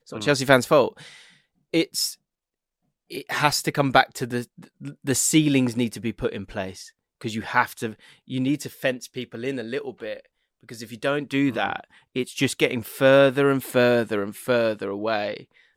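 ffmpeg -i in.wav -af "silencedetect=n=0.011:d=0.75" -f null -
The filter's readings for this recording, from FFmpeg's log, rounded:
silence_start: 2.14
silence_end: 3.10 | silence_duration: 0.96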